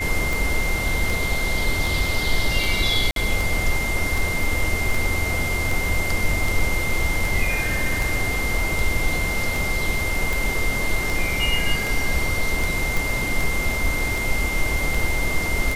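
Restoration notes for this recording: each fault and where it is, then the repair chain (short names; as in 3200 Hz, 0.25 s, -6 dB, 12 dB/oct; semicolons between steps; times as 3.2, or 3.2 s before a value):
tick 78 rpm
tone 2100 Hz -25 dBFS
3.11–3.16 gap 52 ms
12.97 pop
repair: de-click; notch 2100 Hz, Q 30; interpolate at 3.11, 52 ms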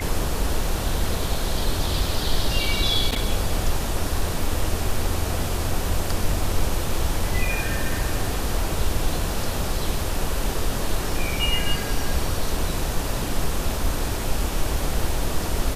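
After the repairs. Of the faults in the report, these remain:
none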